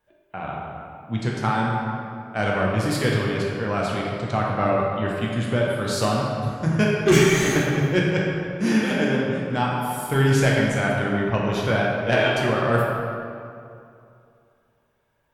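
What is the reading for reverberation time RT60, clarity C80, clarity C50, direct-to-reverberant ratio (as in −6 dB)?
2.5 s, 1.0 dB, −1.0 dB, −4.0 dB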